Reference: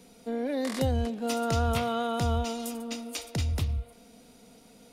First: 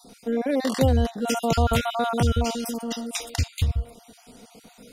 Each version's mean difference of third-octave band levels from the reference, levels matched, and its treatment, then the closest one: 4.0 dB: random holes in the spectrogram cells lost 34%; trim +7.5 dB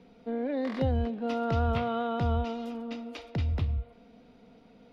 5.5 dB: distance through air 310 m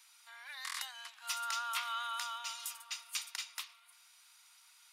16.0 dB: steep high-pass 1 kHz 48 dB/octave; trim -1.5 dB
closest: first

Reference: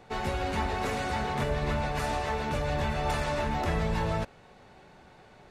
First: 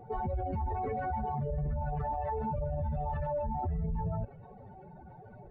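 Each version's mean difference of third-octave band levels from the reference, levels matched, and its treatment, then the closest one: 14.0 dB: spectral contrast enhancement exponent 2.8; peaking EQ 110 Hz +4.5 dB 1.2 oct; peak limiter -30 dBFS, peak gain reduction 11 dB; trim +3 dB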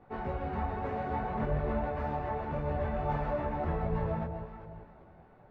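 8.5 dB: low-pass 1.3 kHz 12 dB/octave; echo whose repeats swap between lows and highs 195 ms, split 850 Hz, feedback 56%, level -6 dB; detune thickener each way 22 cents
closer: second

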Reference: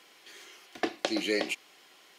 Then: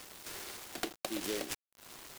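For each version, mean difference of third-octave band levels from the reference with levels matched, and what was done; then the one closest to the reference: 12.5 dB: compression 2.5:1, threshold -49 dBFS, peak gain reduction 16.5 dB; bit crusher 9-bit; delay time shaken by noise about 2.8 kHz, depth 0.13 ms; trim +7 dB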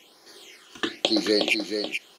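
5.5 dB: dynamic bell 3.4 kHz, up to +6 dB, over -47 dBFS, Q 0.84; phase shifter stages 8, 1 Hz, lowest notch 600–2800 Hz; on a send: delay 432 ms -6.5 dB; on the sum: trim +6.5 dB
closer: second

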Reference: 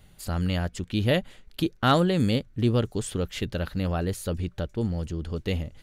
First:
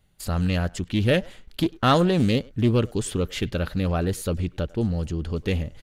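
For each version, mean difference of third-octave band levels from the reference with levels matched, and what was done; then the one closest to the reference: 1.5 dB: gate -49 dBFS, range -14 dB; in parallel at -5 dB: saturation -21 dBFS, distortion -11 dB; on the sum: speakerphone echo 100 ms, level -22 dB; loudspeaker Doppler distortion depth 0.23 ms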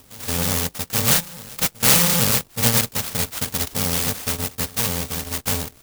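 13.5 dB: bit-reversed sample order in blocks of 128 samples; high-pass 170 Hz 6 dB/octave; reverse echo 826 ms -19.5 dB; sampling jitter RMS 0.15 ms; trim +7.5 dB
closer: first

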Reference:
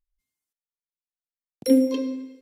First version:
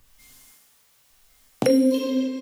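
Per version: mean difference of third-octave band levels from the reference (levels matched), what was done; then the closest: 7.0 dB: peaking EQ 350 Hz -8 dB 0.3 oct; delay 1101 ms -13.5 dB; gated-style reverb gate 340 ms falling, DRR -4.5 dB; three bands compressed up and down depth 100%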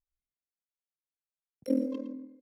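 4.5 dB: local Wiener filter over 15 samples; treble shelf 2.6 kHz -10.5 dB; AM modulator 41 Hz, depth 80%; on a send: delay 112 ms -12 dB; on the sum: trim -6.5 dB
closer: second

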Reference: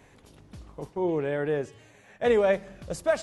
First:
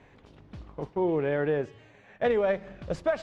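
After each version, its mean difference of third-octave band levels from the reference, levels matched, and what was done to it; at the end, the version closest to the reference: 2.5 dB: tracing distortion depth 0.022 ms; in parallel at -7 dB: crossover distortion -45.5 dBFS; on the sum: low-pass 3.5 kHz 12 dB/octave; compression 6:1, threshold -22 dBFS, peak gain reduction 7.5 dB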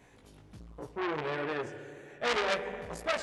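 6.5 dB: dynamic bell 2.2 kHz, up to +6 dB, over -42 dBFS, Q 0.76; chorus 1.3 Hz, delay 16.5 ms, depth 3.8 ms; spring tank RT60 2.6 s, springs 35/53 ms, chirp 30 ms, DRR 9.5 dB; transformer saturation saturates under 3.2 kHz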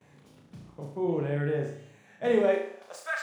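4.5 dB: median filter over 3 samples; gate with hold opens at -48 dBFS; high-pass sweep 140 Hz -> 1.4 kHz, 2.19–3.06 s; on a send: flutter echo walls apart 6 m, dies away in 0.59 s; on the sum: trim -6 dB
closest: first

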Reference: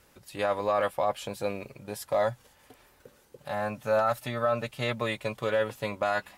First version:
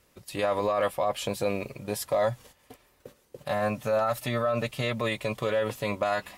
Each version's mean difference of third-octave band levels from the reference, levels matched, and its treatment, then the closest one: 3.0 dB: gate -53 dBFS, range -9 dB; peaking EQ 1.5 kHz -6 dB 0.24 oct; band-stop 840 Hz, Q 12; peak limiter -23.5 dBFS, peak gain reduction 8 dB; trim +6 dB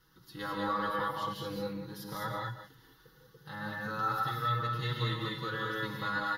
8.0 dB: chunks repeated in reverse 129 ms, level -11 dB; static phaser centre 2.4 kHz, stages 6; comb 6.2 ms, depth 95%; gated-style reverb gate 240 ms rising, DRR -1.5 dB; trim -6 dB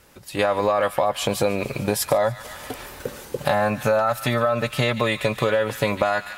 5.5 dB: level rider gain up to 16 dB; feedback echo behind a high-pass 146 ms, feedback 52%, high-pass 1.8 kHz, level -14.5 dB; in parallel at -3 dB: peak limiter -10 dBFS, peak gain reduction 8 dB; on the sum: compression, threshold -20 dBFS, peak gain reduction 13.5 dB; trim +2 dB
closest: first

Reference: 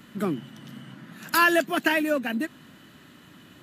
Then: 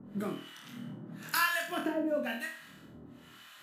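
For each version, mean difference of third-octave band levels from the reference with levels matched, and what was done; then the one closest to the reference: 7.0 dB: compression 2.5:1, threshold -29 dBFS, peak gain reduction 9.5 dB; harmonic tremolo 1 Hz, depth 100%, crossover 860 Hz; on a send: flutter echo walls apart 4.3 m, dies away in 0.47 s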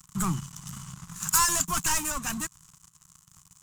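10.0 dB: bass shelf 200 Hz -12 dB; waveshaping leveller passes 5; FFT filter 170 Hz 0 dB, 240 Hz -23 dB, 590 Hz -30 dB, 1.1 kHz -6 dB, 1.7 kHz -21 dB, 4.3 kHz -15 dB, 7.1 kHz +5 dB, 12 kHz -7 dB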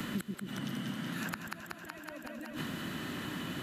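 15.5 dB: inverted gate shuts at -23 dBFS, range -40 dB; on a send: two-band feedback delay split 520 Hz, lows 129 ms, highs 187 ms, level -4 dB; on the sum: three bands compressed up and down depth 100%; trim +3.5 dB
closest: first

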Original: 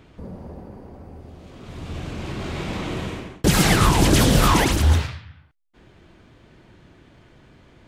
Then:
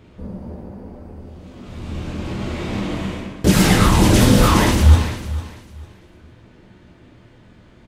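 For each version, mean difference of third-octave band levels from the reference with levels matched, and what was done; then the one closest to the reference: 2.5 dB: peaking EQ 160 Hz +3.5 dB 1.7 oct; on a send: feedback delay 449 ms, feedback 24%, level -15 dB; on the sum: plate-style reverb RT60 0.61 s, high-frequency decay 0.85×, DRR 0.5 dB; trim -1.5 dB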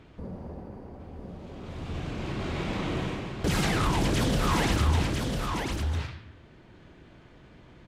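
6.0 dB: treble shelf 8 kHz -10 dB; peak limiter -15 dBFS, peak gain reduction 10 dB; on a send: delay 999 ms -4.5 dB; on the sum: trim -2.5 dB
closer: first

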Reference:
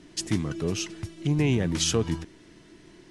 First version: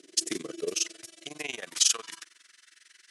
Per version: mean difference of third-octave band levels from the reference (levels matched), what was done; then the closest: 10.0 dB: AM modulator 22 Hz, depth 85%; peaking EQ 890 Hz -14 dB 0.44 oct; high-pass sweep 400 Hz -> 1.5 kHz, 0.40–2.69 s; peaking EQ 10 kHz +14 dB 2.6 oct; trim -3 dB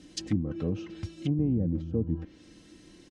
7.5 dB: high-pass 49 Hz 6 dB/octave; comb 3.8 ms, depth 70%; low-pass that closes with the level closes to 360 Hz, closed at -21.5 dBFS; graphic EQ 125/250/1000/2000 Hz +6/-5/-7/-5 dB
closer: second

